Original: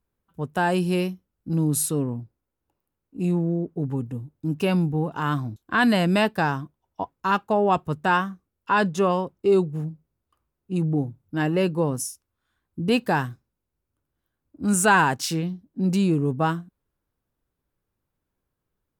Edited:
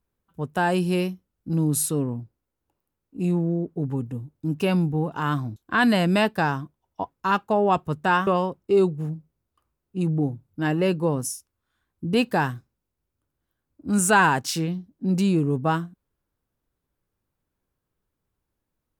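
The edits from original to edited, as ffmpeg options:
-filter_complex "[0:a]asplit=2[s0][s1];[s0]atrim=end=8.272[s2];[s1]atrim=start=9.018[s3];[s2][s3]acrossfade=d=0.004:c1=hsin:c2=hsin"

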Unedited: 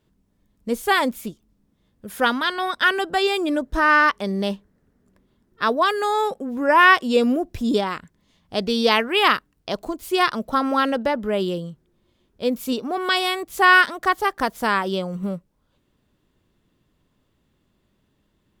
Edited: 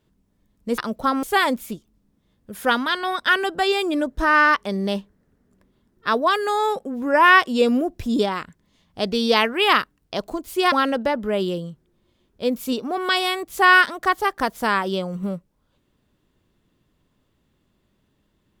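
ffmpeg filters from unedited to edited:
-filter_complex "[0:a]asplit=4[s0][s1][s2][s3];[s0]atrim=end=0.782[s4];[s1]atrim=start=10.268:end=10.722[s5];[s2]atrim=start=0.778:end=10.272[s6];[s3]atrim=start=10.718[s7];[s4][s5]acrossfade=d=0.004:c1=hsin:c2=hsin[s8];[s8][s6]acrossfade=d=0.004:c1=hsin:c2=hsin[s9];[s9][s7]acrossfade=d=0.004:c1=hsin:c2=hsin"

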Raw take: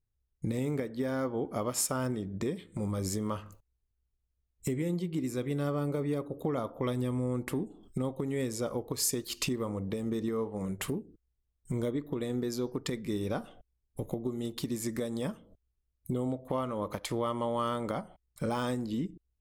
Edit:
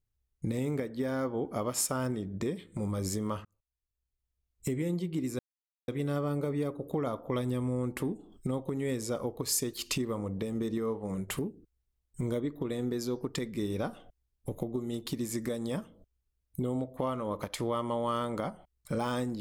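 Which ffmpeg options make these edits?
-filter_complex "[0:a]asplit=3[s0][s1][s2];[s0]atrim=end=3.45,asetpts=PTS-STARTPTS,afade=t=out:st=3.446:d=0.004:c=hsin[s3];[s1]atrim=start=3.45:end=5.39,asetpts=PTS-STARTPTS,afade=t=in:d=1.28,afade=t=out:st=1.936:d=0.004:c=hsin,apad=pad_dur=0.49[s4];[s2]atrim=start=5.39,asetpts=PTS-STARTPTS,afade=t=in:d=0.004:c=hsin[s5];[s3][s4][s5]concat=n=3:v=0:a=1"

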